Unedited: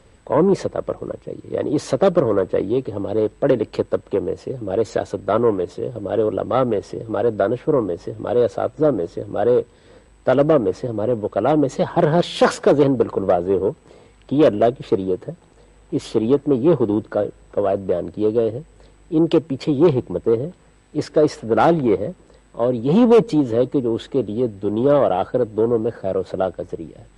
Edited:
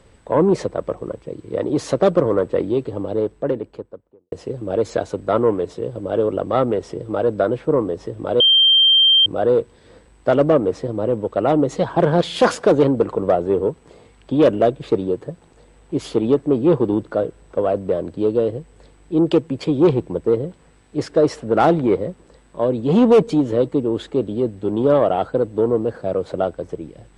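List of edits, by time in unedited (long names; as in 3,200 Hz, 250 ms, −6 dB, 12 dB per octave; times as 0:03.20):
0:02.82–0:04.32: fade out and dull
0:08.40–0:09.26: beep over 3,160 Hz −9.5 dBFS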